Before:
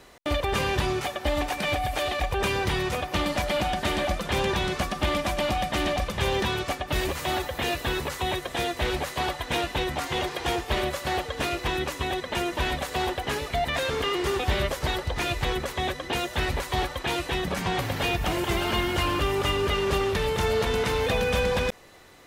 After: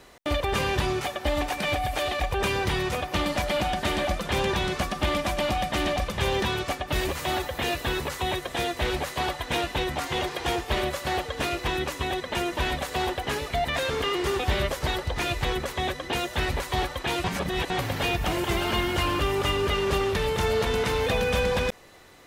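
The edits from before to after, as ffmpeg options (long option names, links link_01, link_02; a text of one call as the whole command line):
ffmpeg -i in.wav -filter_complex "[0:a]asplit=3[link_01][link_02][link_03];[link_01]atrim=end=17.242[link_04];[link_02]atrim=start=17.238:end=17.702,asetpts=PTS-STARTPTS,areverse[link_05];[link_03]atrim=start=17.698[link_06];[link_04][link_05]acrossfade=duration=0.004:curve1=hsin:curve2=hsin[link_07];[link_07][link_06]acrossfade=duration=0.004:curve1=hsin:curve2=hsin" out.wav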